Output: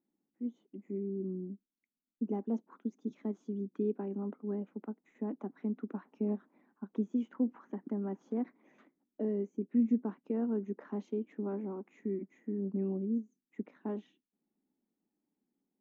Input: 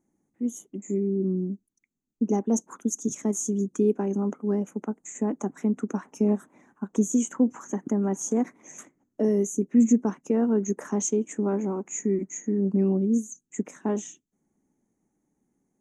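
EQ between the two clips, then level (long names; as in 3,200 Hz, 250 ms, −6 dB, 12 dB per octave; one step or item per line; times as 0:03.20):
transistor ladder low-pass 4,800 Hz, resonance 65%
high-frequency loss of the air 420 metres
low shelf with overshoot 160 Hz −10 dB, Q 1.5
0.0 dB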